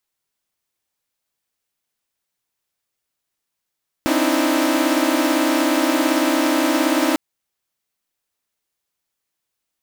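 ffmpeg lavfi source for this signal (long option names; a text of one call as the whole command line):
ffmpeg -f lavfi -i "aevalsrc='0.112*((2*mod(261.63*t,1)-1)+(2*mod(293.66*t,1)-1)+(2*mod(311.13*t,1)-1)+(2*mod(329.63*t,1)-1))':duration=3.1:sample_rate=44100" out.wav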